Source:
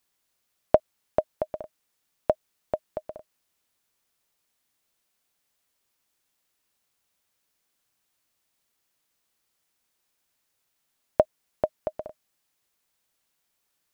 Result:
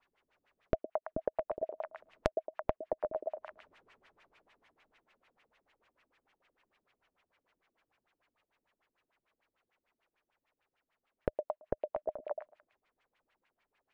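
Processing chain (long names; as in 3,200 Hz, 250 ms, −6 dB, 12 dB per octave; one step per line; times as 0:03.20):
source passing by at 0:03.24, 6 m/s, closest 4.3 metres
on a send: echo through a band-pass that steps 111 ms, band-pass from 480 Hz, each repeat 0.7 octaves, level −1.5 dB
on the sum: auto-filter low-pass sine 6.7 Hz 240–2,600 Hz
in parallel at −2 dB: speech leveller within 10 dB
on the sum: low-shelf EQ 260 Hz −10.5 dB
downward compressor 6 to 1, threshold −48 dBFS, peak gain reduction 28 dB
low-shelf EQ 69 Hz +12 dB
level +15 dB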